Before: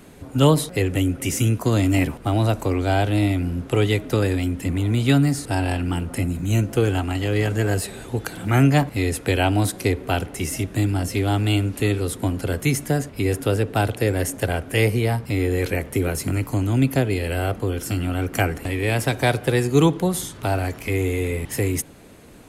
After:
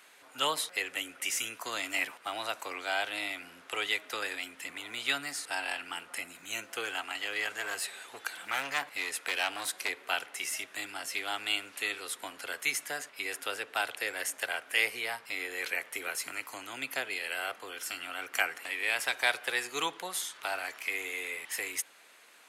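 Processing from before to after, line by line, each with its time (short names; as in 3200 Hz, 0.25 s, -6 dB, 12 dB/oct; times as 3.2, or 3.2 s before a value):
7.56–9.89 hard clip -16.5 dBFS
whole clip: HPF 1400 Hz 12 dB/oct; high shelf 5000 Hz -8 dB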